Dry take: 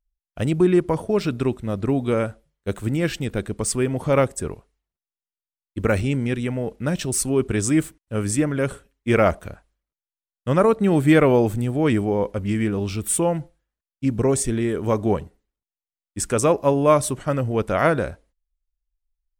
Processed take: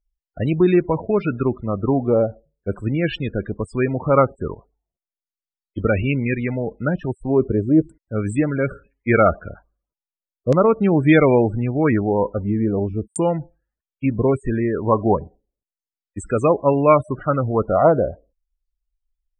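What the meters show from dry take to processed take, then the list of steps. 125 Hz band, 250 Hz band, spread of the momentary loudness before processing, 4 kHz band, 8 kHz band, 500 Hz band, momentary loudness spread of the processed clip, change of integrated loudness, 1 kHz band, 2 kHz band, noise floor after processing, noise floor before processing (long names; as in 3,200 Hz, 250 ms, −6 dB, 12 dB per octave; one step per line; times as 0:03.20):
+1.5 dB, +2.0 dB, 10 LU, can't be measured, below −15 dB, +2.5 dB, 11 LU, +2.0 dB, +3.5 dB, +1.5 dB, below −85 dBFS, below −85 dBFS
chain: spectral peaks only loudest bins 32
auto-filter low-pass saw down 0.38 Hz 490–6,500 Hz
level +1.5 dB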